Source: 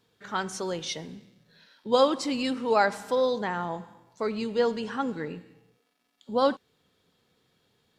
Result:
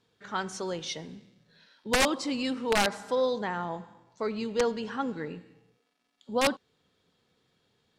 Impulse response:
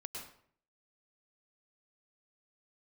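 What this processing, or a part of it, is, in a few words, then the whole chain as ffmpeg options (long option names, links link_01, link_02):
overflowing digital effects unit: -filter_complex "[0:a]aeval=exprs='(mod(5.31*val(0)+1,2)-1)/5.31':channel_layout=same,lowpass=9100,asettb=1/sr,asplit=3[link_01][link_02][link_03];[link_01]atrim=end=3.644[link_04];[link_02]atrim=start=3.64:end=5.21,asetpts=PTS-STARTPTS,afade=type=in:duration=0.004:curve=qsin,afade=type=out:start_time=1.566:duration=0.004:curve=qsin,lowpass=8700[link_05];[link_03]atrim=start=5.206[link_06];[link_04][link_05]acrossfade=duration=0.004:curve1=hsin:curve2=qsin[link_07];[link_07][link_06]acrossfade=duration=0.004:curve1=qsin:curve2=hsin,volume=-2dB"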